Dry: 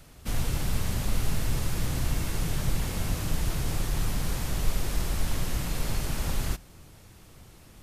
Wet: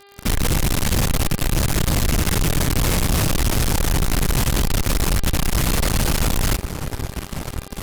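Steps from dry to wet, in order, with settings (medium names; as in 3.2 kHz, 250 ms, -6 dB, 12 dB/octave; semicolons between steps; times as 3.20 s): feedback echo behind a low-pass 539 ms, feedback 78%, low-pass 1.8 kHz, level -21.5 dB; fuzz box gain 41 dB, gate -44 dBFS; mains buzz 400 Hz, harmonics 12, -46 dBFS; trim -2.5 dB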